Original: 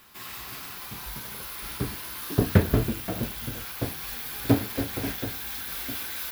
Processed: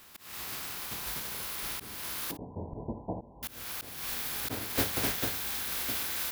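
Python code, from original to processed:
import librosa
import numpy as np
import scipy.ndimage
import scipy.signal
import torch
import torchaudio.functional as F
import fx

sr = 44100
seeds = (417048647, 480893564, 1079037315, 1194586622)

y = fx.spec_flatten(x, sr, power=0.58)
y = fx.cheby1_lowpass(y, sr, hz=1000.0, order=8, at=(2.31, 3.43))
y = fx.room_early_taps(y, sr, ms=(12, 56), db=(-15.5, -15.0))
y = fx.auto_swell(y, sr, attack_ms=266.0)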